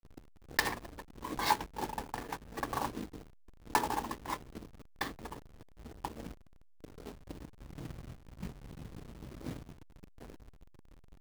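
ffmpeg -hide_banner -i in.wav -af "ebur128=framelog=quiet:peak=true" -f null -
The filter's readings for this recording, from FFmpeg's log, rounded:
Integrated loudness:
  I:         -39.1 LUFS
  Threshold: -50.6 LUFS
Loudness range:
  LRA:        12.5 LU
  Threshold: -61.1 LUFS
  LRA low:   -49.4 LUFS
  LRA high:  -36.9 LUFS
True peak:
  Peak:       -9.9 dBFS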